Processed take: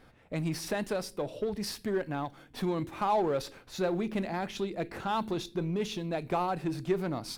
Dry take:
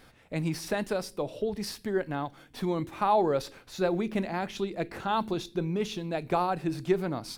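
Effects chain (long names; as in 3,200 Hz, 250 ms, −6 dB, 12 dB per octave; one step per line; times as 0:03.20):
camcorder AGC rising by 5 dB per second
in parallel at −4.5 dB: hard clipping −30.5 dBFS, distortion −6 dB
on the sum: one half of a high-frequency compander decoder only
level −5 dB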